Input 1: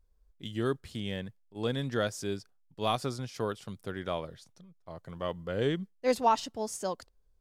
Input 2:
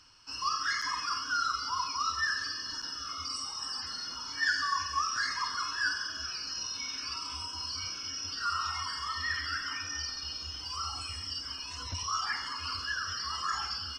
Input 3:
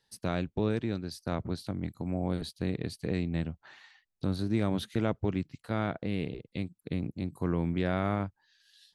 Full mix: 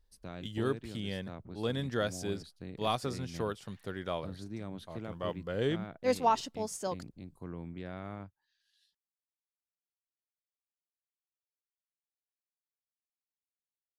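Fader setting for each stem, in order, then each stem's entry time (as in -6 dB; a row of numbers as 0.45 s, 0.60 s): -2.0 dB, mute, -13.0 dB; 0.00 s, mute, 0.00 s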